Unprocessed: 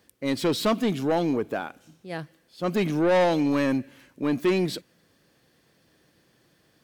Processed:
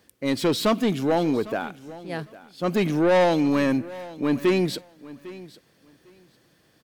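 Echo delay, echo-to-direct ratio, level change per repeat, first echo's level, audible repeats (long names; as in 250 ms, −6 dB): 802 ms, −18.5 dB, −15.0 dB, −18.5 dB, 2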